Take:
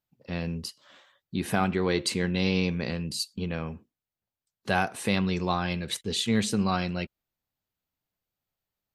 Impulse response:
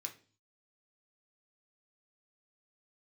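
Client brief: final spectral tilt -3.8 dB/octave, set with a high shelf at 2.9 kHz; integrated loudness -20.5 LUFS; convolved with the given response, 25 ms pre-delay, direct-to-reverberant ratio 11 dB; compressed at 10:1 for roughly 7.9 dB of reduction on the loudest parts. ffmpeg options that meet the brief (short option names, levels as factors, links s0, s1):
-filter_complex "[0:a]highshelf=f=2900:g=6,acompressor=threshold=0.0447:ratio=10,asplit=2[s0][s1];[1:a]atrim=start_sample=2205,adelay=25[s2];[s1][s2]afir=irnorm=-1:irlink=0,volume=0.398[s3];[s0][s3]amix=inputs=2:normalize=0,volume=3.98"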